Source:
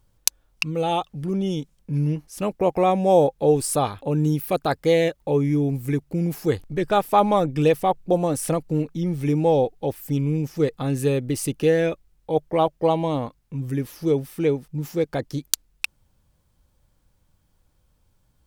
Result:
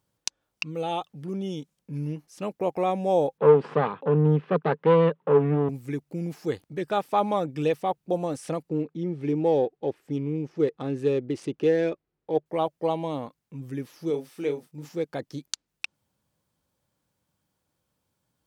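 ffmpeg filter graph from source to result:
-filter_complex "[0:a]asettb=1/sr,asplit=3[s0][s1][s2];[s0]atrim=end=3.384[s3];[s1]atrim=start=3.38:end=5.69,asetpts=PTS-STARTPTS,afade=t=in:d=0.004:c=qsin,afade=t=out:st=2.306:d=0.004:c=qsin,aeval=exprs='clip(val(0),-1,0.0355)':c=same,acontrast=79,highpass=f=140:w=0.5412,highpass=f=140:w=1.3066,equalizer=f=160:t=q:w=4:g=8,equalizer=f=300:t=q:w=4:g=-4,equalizer=f=440:t=q:w=4:g=8,equalizer=f=690:t=q:w=4:g=-5,equalizer=f=1000:t=q:w=4:g=6,equalizer=f=2200:t=q:w=4:g=-5,lowpass=f=2700:w=0.5412,lowpass=f=2700:w=1.3066[s4];[s2]atrim=start=5.686[s5];[s3][s4]acrossfade=d=0.004:c1=hsin:c2=qsin[s6];[s6][s5]acrossfade=d=0.004:c1=qsin:c2=hsin,asettb=1/sr,asplit=3[s7][s8][s9];[s7]atrim=end=8.694[s10];[s8]atrim=start=8.69:end=12.46,asetpts=PTS-STARTPTS,afade=t=in:d=0.004:c=qsin,afade=t=out:st=3.766:d=0.004:c=qsin,adynamicsmooth=sensitivity=4:basefreq=3000,equalizer=f=380:w=2.4:g=7[s11];[s9]atrim=start=12.456[s12];[s10][s11]acrossfade=d=0.004:c1=hsin:c2=qsin[s13];[s13][s12]acrossfade=d=0.004:c1=qsin:c2=hsin,asettb=1/sr,asplit=3[s14][s15][s16];[s14]atrim=end=14.104[s17];[s15]atrim=start=14.1:end=14.89,asetpts=PTS-STARTPTS,afade=t=in:d=0.004:c=qsin,afade=t=out:st=0.786:d=0.004:c=qsin,bass=f=250:g=-7,treble=f=4000:g=2,asplit=2[s18][s19];[s19]adelay=34,volume=0.422[s20];[s18][s20]amix=inputs=2:normalize=0,atrim=end_sample=34839[s21];[s16]atrim=start=14.886[s22];[s17][s21]acrossfade=d=0.004:c1=hsin:c2=qsin[s23];[s23][s22]acrossfade=d=0.004:c1=qsin:c2=hsin,highpass=150,acrossover=split=7500[s24][s25];[s25]acompressor=threshold=0.002:ratio=4:attack=1:release=60[s26];[s24][s26]amix=inputs=2:normalize=0,volume=0.501"

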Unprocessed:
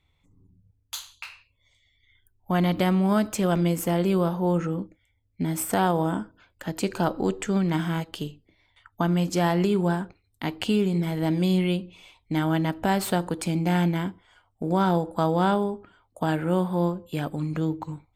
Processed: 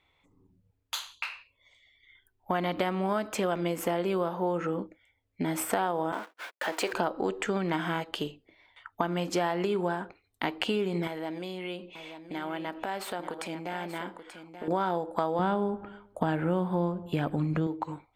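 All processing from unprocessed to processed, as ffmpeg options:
-filter_complex "[0:a]asettb=1/sr,asplit=3[s0][s1][s2];[s0]atrim=end=6.124[s3];[s1]atrim=start=6.12:end=6.93,asetpts=PTS-STARTPTS,afade=t=in:d=0.004:c=qsin,afade=t=out:st=0.806:d=0.004:c=qsin,aeval=exprs='val(0)+0.5*0.02*sgn(val(0))':c=same,highpass=430,agate=range=0.00158:threshold=0.01:ratio=16:release=100:detection=peak[s4];[s2]atrim=start=6.926[s5];[s3][s4]acrossfade=d=0.004:c1=hsin:c2=qsin[s6];[s6][s5]acrossfade=d=0.004:c1=qsin:c2=hsin,asettb=1/sr,asplit=3[s7][s8][s9];[s7]atrim=end=11.074[s10];[s8]atrim=start=11.07:end=14.68,asetpts=PTS-STARTPTS,afade=t=in:d=0.004:c=qsin,afade=t=out:st=3.606:d=0.004:c=qsin,equalizer=f=76:t=o:w=2.1:g=-11.5,acompressor=threshold=0.0178:ratio=5:attack=3.2:release=140:knee=1:detection=peak,aecho=1:1:883:0.282,atrim=end_sample=159201[s11];[s9]atrim=start=14.676[s12];[s10][s11]acrossfade=d=0.004:c1=hsin:c2=qsin[s13];[s13][s12]acrossfade=d=0.004:c1=qsin:c2=hsin,asettb=1/sr,asplit=3[s14][s15][s16];[s14]atrim=end=15.394[s17];[s15]atrim=start=15.39:end=17.67,asetpts=PTS-STARTPTS,afade=t=in:d=0.004:c=qsin,afade=t=out:st=2.276:d=0.004:c=qsin,bass=f=250:g=13,treble=f=4000:g=-2,asplit=2[s18][s19];[s19]adelay=103,lowpass=f=2300:p=1,volume=0.0794,asplit=2[s20][s21];[s21]adelay=103,lowpass=f=2300:p=1,volume=0.51,asplit=2[s22][s23];[s23]adelay=103,lowpass=f=2300:p=1,volume=0.51,asplit=2[s24][s25];[s25]adelay=103,lowpass=f=2300:p=1,volume=0.51[s26];[s18][s20][s22][s24][s26]amix=inputs=5:normalize=0,atrim=end_sample=100548[s27];[s16]atrim=start=17.666[s28];[s17][s27]acrossfade=d=0.004:c1=hsin:c2=qsin[s29];[s29][s28]acrossfade=d=0.004:c1=qsin:c2=hsin,bass=f=250:g=-15,treble=f=4000:g=-10,acompressor=threshold=0.0251:ratio=4,volume=2"

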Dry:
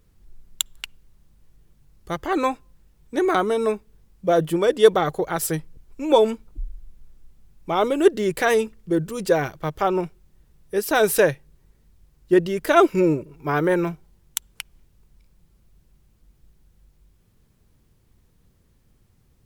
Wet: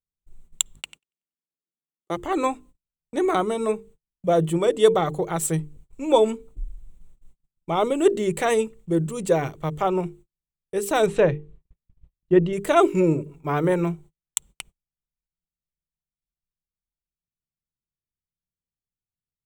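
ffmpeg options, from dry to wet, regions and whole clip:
-filter_complex "[0:a]asettb=1/sr,asplit=3[s0][s1][s2];[s0]atrim=end=0.754[s3];[s1]atrim=start=0.75:end=2.17,asetpts=PTS-STARTPTS,afade=t=in:d=0.004:c=qsin,afade=t=out:st=1.416:d=0.004:c=qsin,highpass=f=290:t=q:w=1.7,aeval=exprs='val(0)+0.00447*(sin(2*PI*50*n/s)+sin(2*PI*2*50*n/s)/2+sin(2*PI*3*50*n/s)/3+sin(2*PI*4*50*n/s)/4+sin(2*PI*5*50*n/s)/5)':c=same,aecho=1:1:94|188|282|376|470:0.224|0.105|0.0495|0.0232|0.0109,atrim=end_sample=62622[s4];[s2]atrim=start=2.166[s5];[s3][s4]acrossfade=d=0.004:c1=hsin:c2=qsin[s6];[s6][s5]acrossfade=d=0.004:c1=qsin:c2=hsin,asettb=1/sr,asplit=3[s7][s8][s9];[s7]atrim=end=11.064[s10];[s8]atrim=start=11.06:end=12.53,asetpts=PTS-STARTPTS,afade=t=in:d=0.004:c=qsin,afade=t=out:st=1.466:d=0.004:c=qsin,lowpass=3100,lowshelf=f=110:g=9[s11];[s9]atrim=start=12.526[s12];[s10][s11]acrossfade=d=0.004:c1=hsin:c2=qsin[s13];[s13][s12]acrossfade=d=0.004:c1=qsin:c2=hsin,bandreject=f=50:t=h:w=6,bandreject=f=100:t=h:w=6,bandreject=f=150:t=h:w=6,bandreject=f=200:t=h:w=6,bandreject=f=250:t=h:w=6,bandreject=f=300:t=h:w=6,bandreject=f=350:t=h:w=6,bandreject=f=400:t=h:w=6,bandreject=f=450:t=h:w=6,agate=range=0.0141:threshold=0.00631:ratio=16:detection=peak,equalizer=f=160:t=o:w=0.33:g=6,equalizer=f=1600:t=o:w=0.33:g=-8,equalizer=f=5000:t=o:w=0.33:g=-12,equalizer=f=8000:t=o:w=0.33:g=9,equalizer=f=12500:t=o:w=0.33:g=-10,volume=0.891"

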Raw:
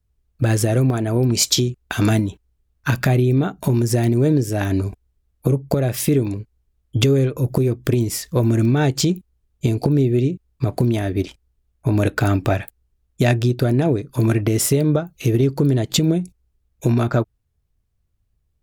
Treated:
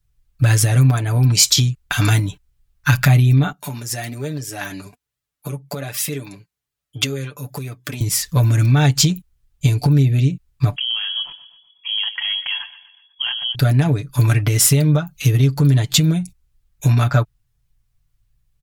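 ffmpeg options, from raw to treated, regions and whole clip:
-filter_complex "[0:a]asettb=1/sr,asplit=3[s0][s1][s2];[s0]atrim=end=3.524[s3];[s1]atrim=start=3.52:end=8.01,asetpts=PTS-STARTPTS,afade=t=in:d=0.004:c=qsin,afade=t=out:st=4.486:d=0.004:c=qsin,highpass=130,lowshelf=f=180:g=-10,flanger=delay=1.5:depth=4.3:regen=52:speed=1.2:shape=sinusoidal[s4];[s2]atrim=start=8.006[s5];[s3][s4]acrossfade=d=0.004:c1=hsin:c2=qsin[s6];[s6][s5]acrossfade=d=0.004:c1=qsin:c2=hsin,asettb=1/sr,asplit=3[s7][s8][s9];[s7]atrim=end=10.764[s10];[s8]atrim=start=10.76:end=13.55,asetpts=PTS-STARTPTS,afade=t=in:d=0.004:c=qsin,afade=t=out:st=2.786:d=0.004:c=qsin,acompressor=threshold=0.02:ratio=2:attack=3.2:release=140:knee=1:detection=peak,aecho=1:1:122|244|366|488:0.178|0.0836|0.0393|0.0185,atrim=end_sample=123039,lowpass=f=2900:t=q:w=0.5098,lowpass=f=2900:t=q:w=0.6013,lowpass=f=2900:t=q:w=0.9,lowpass=f=2900:t=q:w=2.563,afreqshift=-3400[s11];[s9]atrim=start=13.546[s12];[s10][s11]acrossfade=d=0.004:c1=hsin:c2=qsin[s13];[s13][s12]acrossfade=d=0.004:c1=qsin:c2=hsin,equalizer=f=380:w=0.77:g=-15,aecho=1:1:6.9:0.74,alimiter=level_in=2:limit=0.891:release=50:level=0:latency=1,volume=0.891"

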